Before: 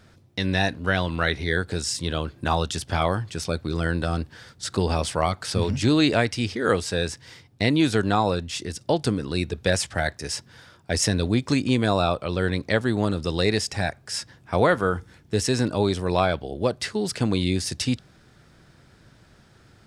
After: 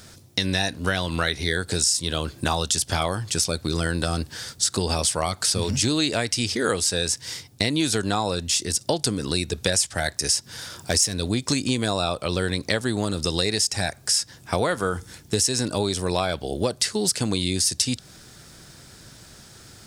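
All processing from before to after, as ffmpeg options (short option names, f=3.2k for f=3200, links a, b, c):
-filter_complex "[0:a]asettb=1/sr,asplit=3[a][b][c];[a]atrim=end=10.364[d];[b]atrim=start=10.36:end=11.15,asetpts=PTS-STARTPTS,afade=t=in:d=0.004:c=qsin,afade=t=out:st=0.786:d=0.004:c=qsin,acompressor=mode=upward:threshold=-39dB:ratio=2.5:attack=3.2:release=140:knee=2.83:detection=peak,asoftclip=type=hard:threshold=-14dB[e];[c]atrim=start=11.146[f];[d][e]acrossfade=d=0.004:c1=hsin:c2=qsin[g];[g][f]acrossfade=d=0.004:c1=qsin:c2=hsin,bass=f=250:g=-1,treble=f=4k:g=15,acompressor=threshold=-26dB:ratio=4,volume=5.5dB"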